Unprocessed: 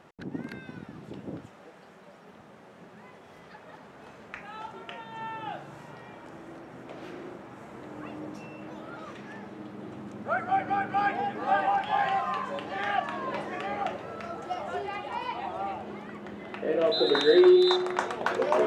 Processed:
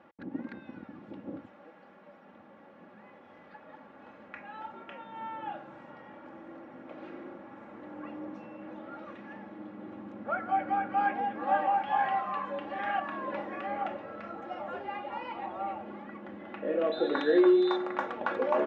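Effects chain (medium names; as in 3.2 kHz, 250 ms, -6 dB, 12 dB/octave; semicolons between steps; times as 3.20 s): band-pass 100–2400 Hz; comb 3.6 ms, depth 60%; trim -4 dB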